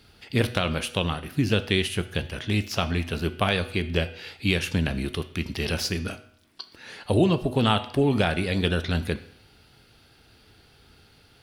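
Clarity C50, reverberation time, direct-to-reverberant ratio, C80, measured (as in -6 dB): 15.0 dB, 0.70 s, 11.0 dB, 17.5 dB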